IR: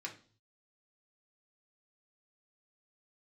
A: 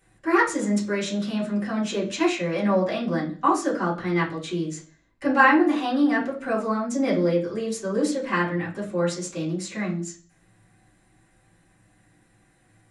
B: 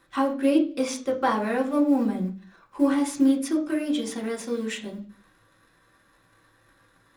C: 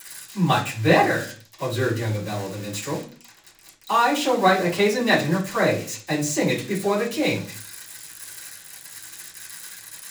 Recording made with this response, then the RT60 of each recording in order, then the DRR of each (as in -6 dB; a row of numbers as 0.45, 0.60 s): B; 0.45, 0.45, 0.45 s; -8.0, -1.0, -14.0 dB